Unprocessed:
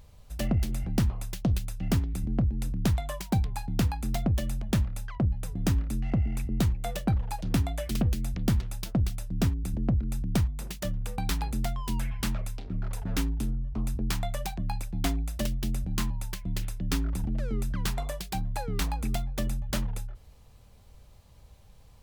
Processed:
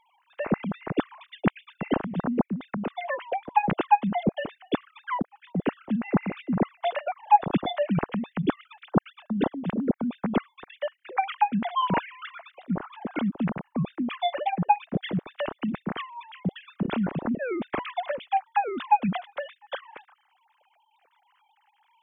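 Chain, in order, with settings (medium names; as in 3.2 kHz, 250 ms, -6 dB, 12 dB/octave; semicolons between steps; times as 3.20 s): formants replaced by sine waves; 2.53–3.07 s: compression 8:1, threshold -28 dBFS, peak gain reduction 10 dB; Nellymoser 88 kbps 44.1 kHz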